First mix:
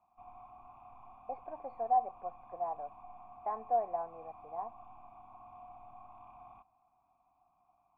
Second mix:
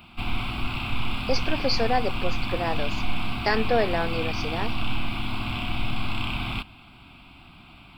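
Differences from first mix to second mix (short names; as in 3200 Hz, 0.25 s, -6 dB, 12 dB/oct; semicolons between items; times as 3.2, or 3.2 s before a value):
background +9.0 dB; master: remove vocal tract filter a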